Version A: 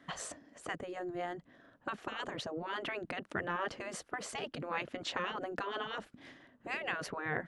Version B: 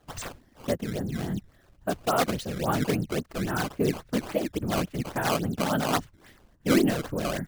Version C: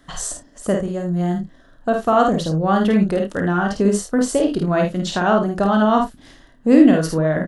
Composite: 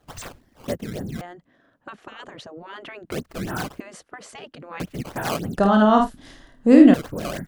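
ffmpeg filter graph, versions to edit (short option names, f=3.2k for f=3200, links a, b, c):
-filter_complex "[0:a]asplit=2[a][b];[1:a]asplit=4[c][d][e][f];[c]atrim=end=1.212[g];[a]atrim=start=1.208:end=3.112[h];[d]atrim=start=3.108:end=3.802[i];[b]atrim=start=3.798:end=4.802[j];[e]atrim=start=4.798:end=5.582[k];[2:a]atrim=start=5.578:end=6.942[l];[f]atrim=start=6.938[m];[g][h]acrossfade=d=0.004:c1=hsin:c2=hsin[n];[n][i]acrossfade=d=0.004:c1=hsin:c2=hsin[o];[o][j]acrossfade=d=0.004:c1=hsin:c2=hsin[p];[p][k]acrossfade=d=0.004:c1=hsin:c2=hsin[q];[q][l]acrossfade=d=0.004:c1=hsin:c2=hsin[r];[r][m]acrossfade=d=0.004:c1=hsin:c2=hsin"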